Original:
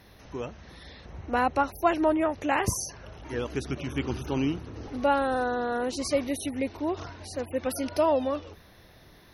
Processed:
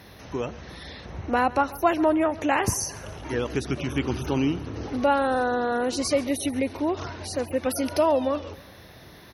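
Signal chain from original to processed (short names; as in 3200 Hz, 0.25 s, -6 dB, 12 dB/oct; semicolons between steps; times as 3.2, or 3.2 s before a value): HPF 62 Hz; in parallel at +2 dB: compressor, threshold -33 dBFS, peak gain reduction 15 dB; on the sum: feedback echo 0.138 s, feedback 44%, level -19.5 dB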